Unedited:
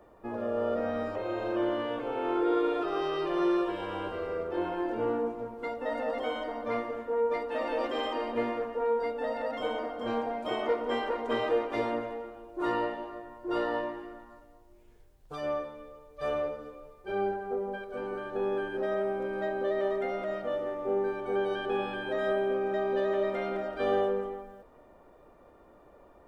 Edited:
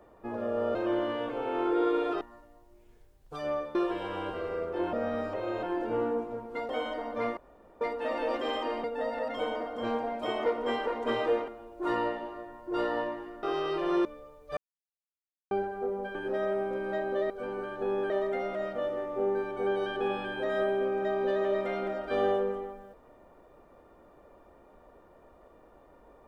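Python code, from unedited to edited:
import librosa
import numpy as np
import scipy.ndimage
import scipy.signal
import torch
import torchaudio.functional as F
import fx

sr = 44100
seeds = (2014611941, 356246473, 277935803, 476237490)

y = fx.edit(x, sr, fx.move(start_s=0.75, length_s=0.7, to_s=4.71),
    fx.swap(start_s=2.91, length_s=0.62, other_s=14.2, other_length_s=1.54),
    fx.cut(start_s=5.77, length_s=0.42),
    fx.room_tone_fill(start_s=6.87, length_s=0.44),
    fx.cut(start_s=8.34, length_s=0.73),
    fx.cut(start_s=11.71, length_s=0.54),
    fx.silence(start_s=16.26, length_s=0.94),
    fx.move(start_s=17.84, length_s=0.8, to_s=19.79), tone=tone)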